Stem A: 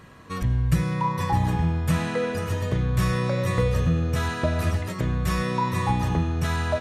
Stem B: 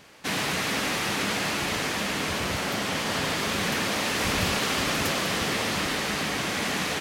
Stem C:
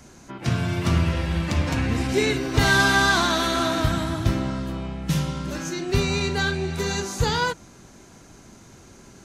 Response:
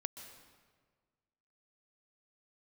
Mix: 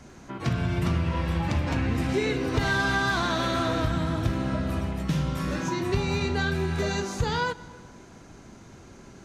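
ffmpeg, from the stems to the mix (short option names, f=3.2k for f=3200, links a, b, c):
-filter_complex "[0:a]adelay=100,volume=-11.5dB,asplit=2[a][b];[b]volume=-4.5dB[c];[2:a]lowpass=f=3.3k:p=1,volume=-1dB,asplit=2[d][e];[e]volume=-11.5dB[f];[3:a]atrim=start_sample=2205[g];[c][f]amix=inputs=2:normalize=0[h];[h][g]afir=irnorm=-1:irlink=0[i];[a][d][i]amix=inputs=3:normalize=0,acompressor=threshold=-23dB:ratio=3"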